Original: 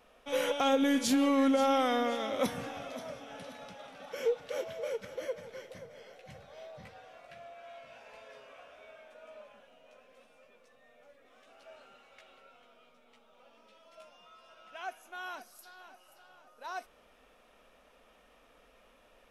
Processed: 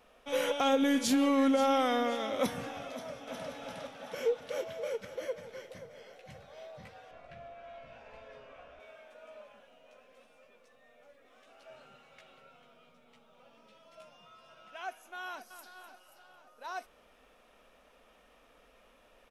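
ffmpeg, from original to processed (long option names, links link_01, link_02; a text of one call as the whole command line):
ffmpeg -i in.wav -filter_complex "[0:a]asplit=2[link_01][link_02];[link_02]afade=type=in:start_time=2.91:duration=0.01,afade=type=out:start_time=3.51:duration=0.01,aecho=0:1:360|720|1080|1440|1800|2160|2520|2880:0.944061|0.519233|0.285578|0.157068|0.0863875|0.0475131|0.0261322|0.0143727[link_03];[link_01][link_03]amix=inputs=2:normalize=0,asettb=1/sr,asplit=3[link_04][link_05][link_06];[link_04]atrim=end=7.114[link_07];[link_05]atrim=start=7.11:end=8.8,asetpts=PTS-STARTPTS,afade=type=in:duration=0.004:curve=qsin,afade=type=out:start_time=1.686:duration=0.004:curve=qsin,aemphasis=mode=reproduction:type=bsi[link_08];[link_06]atrim=start=8.796[link_09];[link_07][link_08]acrossfade=duration=0.004:curve1=hsin:curve2=qsin[link_10];[link_10][link_09]acrossfade=duration=0.004:curve1=qsin:curve2=hsin,asettb=1/sr,asplit=3[link_11][link_12][link_13];[link_11]atrim=end=11.694[link_14];[link_12]atrim=start=11.69:end=14.71,asetpts=PTS-STARTPTS,afade=type=in:duration=0.004:curve=qsin,afade=type=out:start_time=3.016:duration=0.004:curve=qsin,equalizer=frequency=140:width_type=o:width=0.77:gain=14.5[link_15];[link_13]atrim=start=14.706[link_16];[link_14][link_15]acrossfade=duration=0.004:curve1=hsin:curve2=qsin[link_17];[link_17][link_16]acrossfade=duration=0.004:curve1=qsin:curve2=hsin,asplit=2[link_18][link_19];[link_19]afade=type=in:start_time=15.25:duration=0.01,afade=type=out:start_time=15.74:duration=0.01,aecho=0:1:250|500|750|1000:0.298538|0.104488|0.0365709|0.0127998[link_20];[link_18][link_20]amix=inputs=2:normalize=0" out.wav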